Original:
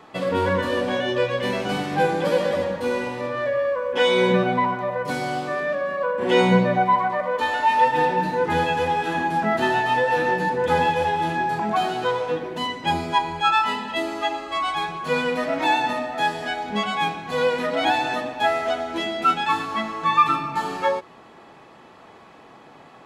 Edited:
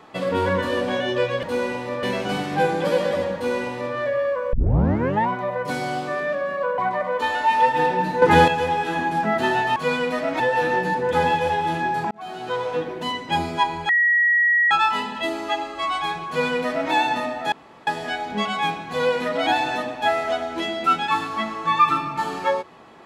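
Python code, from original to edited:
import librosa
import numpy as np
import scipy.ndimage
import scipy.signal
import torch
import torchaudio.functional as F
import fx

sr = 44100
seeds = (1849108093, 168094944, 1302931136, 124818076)

y = fx.edit(x, sr, fx.duplicate(start_s=2.75, length_s=0.6, to_s=1.43),
    fx.tape_start(start_s=3.93, length_s=0.76),
    fx.cut(start_s=6.18, length_s=0.79),
    fx.clip_gain(start_s=8.41, length_s=0.26, db=8.0),
    fx.fade_in_span(start_s=11.66, length_s=0.61),
    fx.insert_tone(at_s=13.44, length_s=0.82, hz=1910.0, db=-14.5),
    fx.duplicate(start_s=15.01, length_s=0.64, to_s=9.95),
    fx.insert_room_tone(at_s=16.25, length_s=0.35), tone=tone)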